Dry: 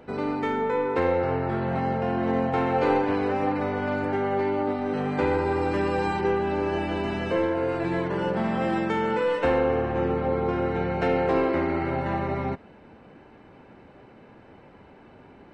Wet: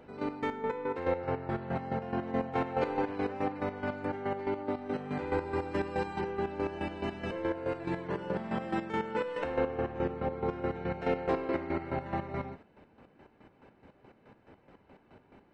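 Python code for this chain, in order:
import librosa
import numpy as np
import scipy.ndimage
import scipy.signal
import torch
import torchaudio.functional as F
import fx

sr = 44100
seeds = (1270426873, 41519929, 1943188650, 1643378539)

y = fx.chopper(x, sr, hz=4.7, depth_pct=65, duty_pct=35)
y = F.gain(torch.from_numpy(y), -5.0).numpy()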